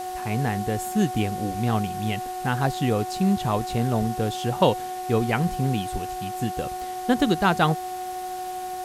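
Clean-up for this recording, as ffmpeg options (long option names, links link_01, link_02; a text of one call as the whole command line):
ffmpeg -i in.wav -af "bandreject=frequency=363.7:width_type=h:width=4,bandreject=frequency=727.4:width_type=h:width=4,bandreject=frequency=1091.1:width_type=h:width=4,bandreject=frequency=1454.8:width_type=h:width=4,bandreject=frequency=1818.5:width_type=h:width=4,bandreject=frequency=740:width=30,afwtdn=0.0071" out.wav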